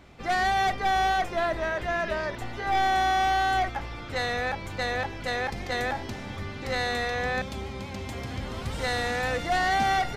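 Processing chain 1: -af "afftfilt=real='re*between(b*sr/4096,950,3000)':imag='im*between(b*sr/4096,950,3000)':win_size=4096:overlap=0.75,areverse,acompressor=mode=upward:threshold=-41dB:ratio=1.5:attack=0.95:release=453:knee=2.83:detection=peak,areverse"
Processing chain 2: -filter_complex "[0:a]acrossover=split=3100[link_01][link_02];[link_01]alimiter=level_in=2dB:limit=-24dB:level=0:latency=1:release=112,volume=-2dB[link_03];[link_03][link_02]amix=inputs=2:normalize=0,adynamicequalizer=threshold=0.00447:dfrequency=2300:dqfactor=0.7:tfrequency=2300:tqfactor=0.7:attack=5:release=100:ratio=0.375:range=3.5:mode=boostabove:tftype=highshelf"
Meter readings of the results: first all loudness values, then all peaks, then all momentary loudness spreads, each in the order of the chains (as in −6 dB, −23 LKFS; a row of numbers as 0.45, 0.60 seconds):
−32.0, −30.5 LKFS; −19.5, −17.0 dBFS; 13, 7 LU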